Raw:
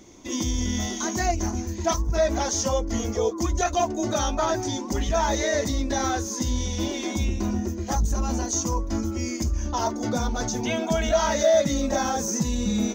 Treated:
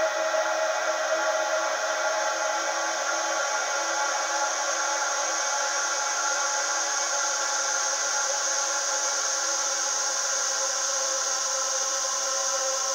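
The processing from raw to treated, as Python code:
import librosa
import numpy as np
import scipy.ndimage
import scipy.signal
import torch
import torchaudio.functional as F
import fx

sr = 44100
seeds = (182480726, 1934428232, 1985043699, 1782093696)

y = fx.filter_sweep_highpass(x, sr, from_hz=990.0, to_hz=2100.0, start_s=0.95, end_s=4.67, q=3.4)
y = fx.band_shelf(y, sr, hz=500.0, db=10.0, octaves=1.2)
y = fx.paulstretch(y, sr, seeds[0], factor=45.0, window_s=0.5, from_s=2.34)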